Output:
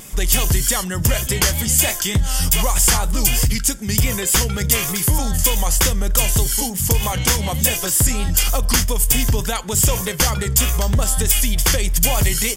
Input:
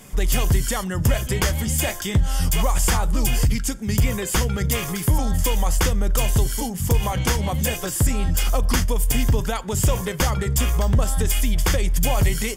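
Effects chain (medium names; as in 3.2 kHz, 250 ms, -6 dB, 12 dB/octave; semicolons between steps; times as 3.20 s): treble shelf 2.6 kHz +10 dB; in parallel at -6 dB: saturation -10 dBFS, distortion -18 dB; on the sum: vibrato 3.3 Hz 46 cents; trim -2.5 dB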